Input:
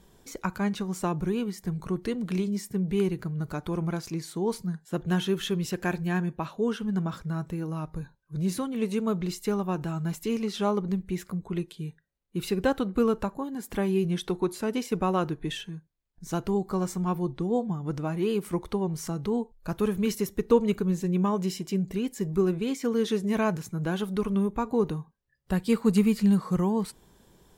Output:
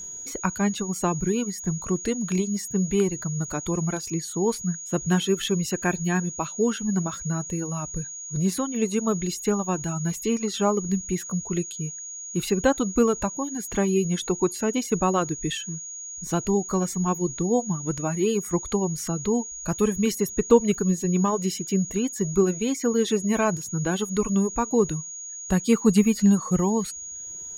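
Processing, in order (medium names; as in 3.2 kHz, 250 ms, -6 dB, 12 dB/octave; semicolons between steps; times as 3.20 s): reverb removal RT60 0.81 s; whistle 6.7 kHz -39 dBFS; trim +4.5 dB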